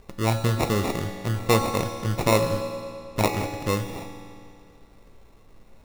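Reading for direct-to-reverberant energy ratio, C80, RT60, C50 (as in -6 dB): 4.0 dB, 6.5 dB, 2.4 s, 5.5 dB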